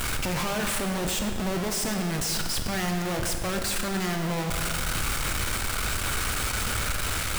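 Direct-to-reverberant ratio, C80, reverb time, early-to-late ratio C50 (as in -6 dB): 4.5 dB, 6.5 dB, 2.1 s, 5.5 dB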